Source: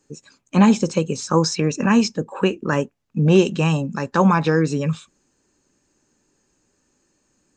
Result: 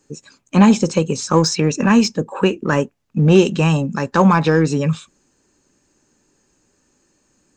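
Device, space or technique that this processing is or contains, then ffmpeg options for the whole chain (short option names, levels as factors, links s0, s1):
parallel distortion: -filter_complex "[0:a]asplit=2[s0][s1];[s1]asoftclip=type=hard:threshold=0.106,volume=0.282[s2];[s0][s2]amix=inputs=2:normalize=0,volume=1.26"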